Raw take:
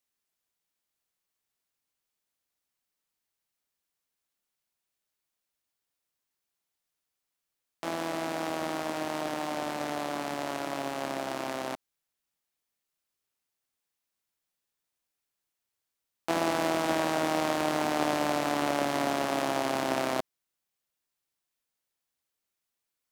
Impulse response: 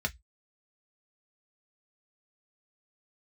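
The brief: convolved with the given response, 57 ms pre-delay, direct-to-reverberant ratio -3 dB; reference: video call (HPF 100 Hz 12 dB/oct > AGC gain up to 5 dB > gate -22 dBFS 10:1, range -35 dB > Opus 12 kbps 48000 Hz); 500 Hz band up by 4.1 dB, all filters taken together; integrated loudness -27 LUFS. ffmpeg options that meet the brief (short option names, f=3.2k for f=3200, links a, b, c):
-filter_complex "[0:a]equalizer=f=500:t=o:g=5.5,asplit=2[a][b];[1:a]atrim=start_sample=2205,adelay=57[c];[b][c]afir=irnorm=-1:irlink=0,volume=-2.5dB[d];[a][d]amix=inputs=2:normalize=0,highpass=100,dynaudnorm=m=5dB,agate=range=-35dB:threshold=-22dB:ratio=10,volume=-4.5dB" -ar 48000 -c:a libopus -b:a 12k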